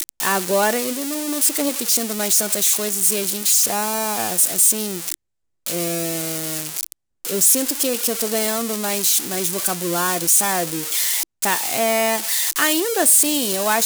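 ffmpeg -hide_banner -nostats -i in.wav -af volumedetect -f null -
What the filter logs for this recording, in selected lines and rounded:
mean_volume: -20.4 dB
max_volume: -5.3 dB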